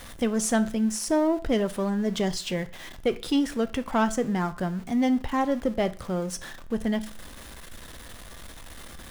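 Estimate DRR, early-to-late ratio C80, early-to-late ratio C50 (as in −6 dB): 11.0 dB, 22.5 dB, 18.0 dB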